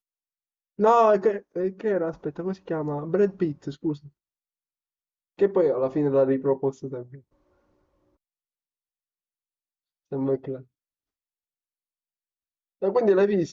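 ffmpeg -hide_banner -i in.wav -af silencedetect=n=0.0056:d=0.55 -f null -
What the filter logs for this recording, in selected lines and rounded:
silence_start: 0.00
silence_end: 0.79 | silence_duration: 0.79
silence_start: 4.08
silence_end: 5.39 | silence_duration: 1.30
silence_start: 7.19
silence_end: 10.12 | silence_duration: 2.92
silence_start: 10.62
silence_end: 12.82 | silence_duration: 2.19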